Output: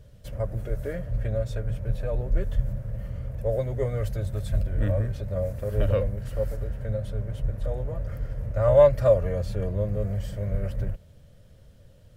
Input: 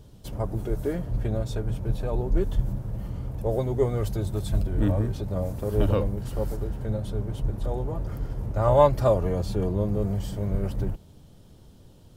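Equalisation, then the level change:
drawn EQ curve 110 Hz 0 dB, 360 Hz −12 dB, 560 Hz +5 dB, 830 Hz −11 dB, 1,800 Hz +4 dB, 3,500 Hz −5 dB
0.0 dB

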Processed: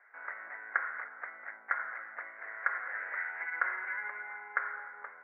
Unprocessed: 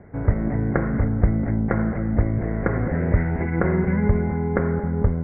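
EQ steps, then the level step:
four-pole ladder high-pass 1,300 Hz, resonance 45%
high-shelf EQ 2,000 Hz −11.5 dB
+8.5 dB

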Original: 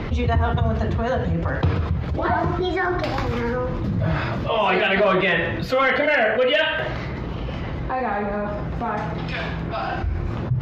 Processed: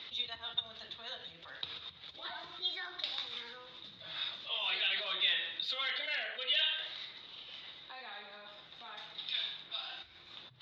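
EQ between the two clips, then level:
resonant band-pass 3,700 Hz, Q 12
+8.0 dB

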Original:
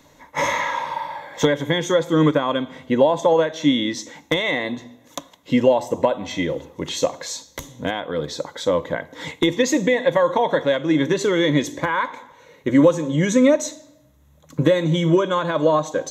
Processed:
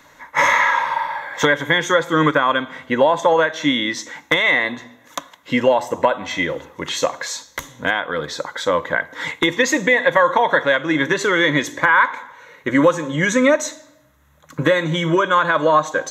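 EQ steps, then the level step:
parametric band 1,500 Hz +14.5 dB 1.6 octaves
high-shelf EQ 5,100 Hz +6 dB
−3.0 dB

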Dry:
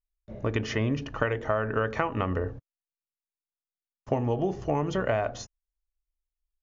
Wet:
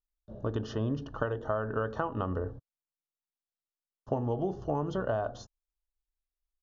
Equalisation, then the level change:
Butterworth band-reject 2,200 Hz, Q 1.4
Bessel low-pass filter 4,000 Hz, order 2
−4.0 dB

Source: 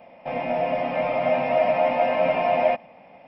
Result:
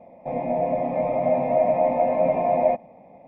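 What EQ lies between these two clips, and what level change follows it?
moving average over 30 samples
+3.5 dB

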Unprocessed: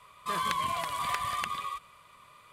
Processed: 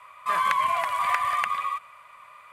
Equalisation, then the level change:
flat-topped bell 1,200 Hz +14.5 dB 2.5 octaves
high-shelf EQ 3,400 Hz +7 dB
−7.5 dB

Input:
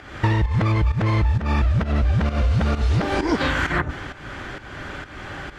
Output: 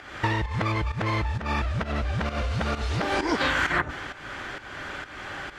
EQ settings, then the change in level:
low-shelf EQ 350 Hz −10 dB
0.0 dB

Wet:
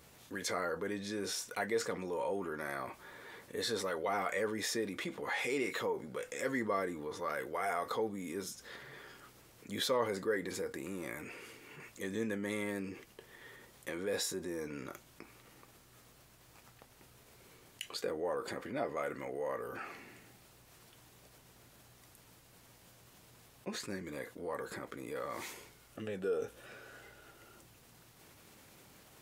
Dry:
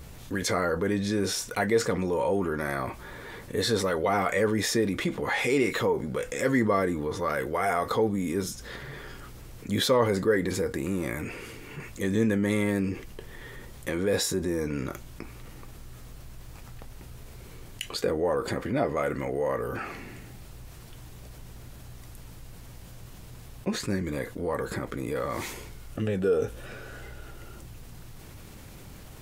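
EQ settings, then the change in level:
high-pass filter 370 Hz 6 dB per octave
−8.0 dB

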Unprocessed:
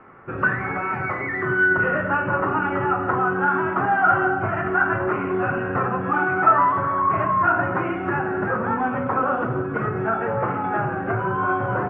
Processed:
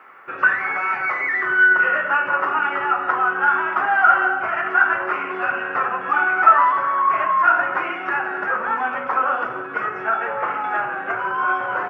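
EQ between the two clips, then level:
high-pass filter 540 Hz 6 dB per octave
spectral tilt +4 dB per octave
+3.0 dB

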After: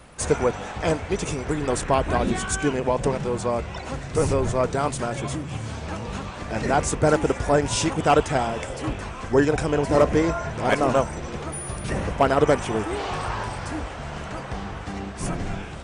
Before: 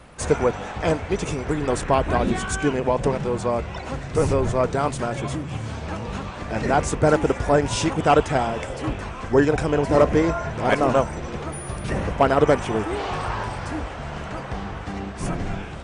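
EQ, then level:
high-shelf EQ 5,800 Hz +7 dB
−1.5 dB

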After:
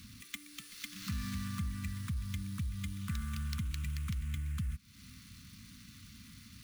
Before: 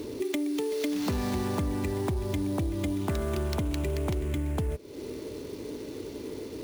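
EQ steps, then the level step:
elliptic band-stop filter 210–1,100 Hz, stop band 40 dB
Butterworth band-reject 790 Hz, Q 1.1
−5.0 dB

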